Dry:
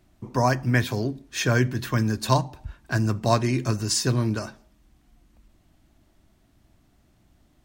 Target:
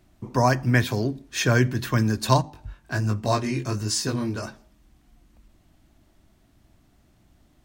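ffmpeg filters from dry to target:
ffmpeg -i in.wav -filter_complex "[0:a]asettb=1/sr,asplit=3[link_01][link_02][link_03];[link_01]atrim=end=2.424[link_04];[link_02]atrim=start=2.42:end=4.43,asetpts=PTS-STARTPTS,afade=type=in:duration=0.004:curve=qsin,afade=type=out:start_time=2.006:duration=0.004:curve=qsin,flanger=delay=19:depth=2.3:speed=1.3[link_05];[link_03]atrim=start=4.426[link_06];[link_04][link_05]acrossfade=duration=0.004:curve1=hsin:curve2=qsin[link_07];[link_07][link_06]acrossfade=duration=0.004:curve1=qsin:curve2=hsin,volume=1.5dB" out.wav

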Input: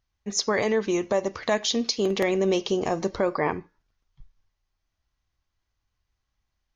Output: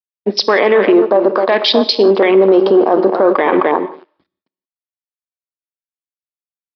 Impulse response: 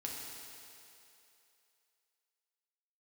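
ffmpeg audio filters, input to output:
-filter_complex "[0:a]asplit=2[link_01][link_02];[link_02]adelay=260,lowpass=frequency=2000:poles=1,volume=-9.5dB,asplit=2[link_03][link_04];[link_04]adelay=260,lowpass=frequency=2000:poles=1,volume=0.16[link_05];[link_01][link_03][link_05]amix=inputs=3:normalize=0,areverse,acompressor=threshold=-30dB:ratio=8,areverse,aeval=exprs='sgn(val(0))*max(abs(val(0))-0.00299,0)':channel_layout=same,afwtdn=0.00631,highpass=frequency=270:width=0.5412,highpass=frequency=270:width=1.3066,asplit=2[link_06][link_07];[1:a]atrim=start_sample=2205,afade=type=out:start_time=0.29:duration=0.01,atrim=end_sample=13230,asetrate=57330,aresample=44100[link_08];[link_07][link_08]afir=irnorm=-1:irlink=0,volume=-9.5dB[link_09];[link_06][link_09]amix=inputs=2:normalize=0,aresample=11025,aresample=44100,acontrast=76,alimiter=level_in=22.5dB:limit=-1dB:release=50:level=0:latency=1,volume=-1.5dB"

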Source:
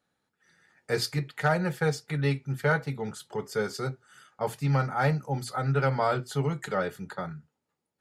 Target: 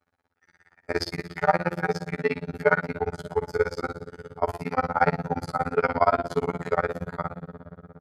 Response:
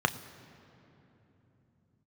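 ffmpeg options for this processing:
-filter_complex "[1:a]atrim=start_sample=2205,asetrate=33075,aresample=44100[link_01];[0:a][link_01]afir=irnorm=-1:irlink=0,afftfilt=real='hypot(re,im)*cos(PI*b)':imag='0':win_size=2048:overlap=0.75,bandreject=frequency=171.5:width_type=h:width=4,bandreject=frequency=343:width_type=h:width=4,bandreject=frequency=514.5:width_type=h:width=4,bandreject=frequency=686:width_type=h:width=4,bandreject=frequency=857.5:width_type=h:width=4,bandreject=frequency=1029:width_type=h:width=4,bandreject=frequency=1200.5:width_type=h:width=4,bandreject=frequency=1372:width_type=h:width=4,bandreject=frequency=1543.5:width_type=h:width=4,bandreject=frequency=1715:width_type=h:width=4,bandreject=frequency=1886.5:width_type=h:width=4,bandreject=frequency=2058:width_type=h:width=4,bandreject=frequency=2229.5:width_type=h:width=4,bandreject=frequency=2401:width_type=h:width=4,bandreject=frequency=2572.5:width_type=h:width=4,bandreject=frequency=2744:width_type=h:width=4,bandreject=frequency=2915.5:width_type=h:width=4,bandreject=frequency=3087:width_type=h:width=4,bandreject=frequency=3258.5:width_type=h:width=4,bandreject=frequency=3430:width_type=h:width=4,bandreject=frequency=3601.5:width_type=h:width=4,bandreject=frequency=3773:width_type=h:width=4,bandreject=frequency=3944.5:width_type=h:width=4,tremolo=f=17:d=1,volume=-1.5dB"

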